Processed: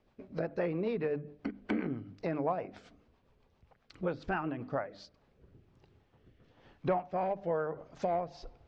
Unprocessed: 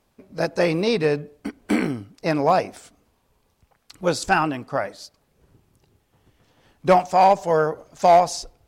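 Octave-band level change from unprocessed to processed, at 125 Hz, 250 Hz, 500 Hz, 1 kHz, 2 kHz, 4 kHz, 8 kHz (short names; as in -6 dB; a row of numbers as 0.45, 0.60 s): -11.0 dB, -11.0 dB, -13.5 dB, -18.0 dB, -15.5 dB, -22.0 dB, under -30 dB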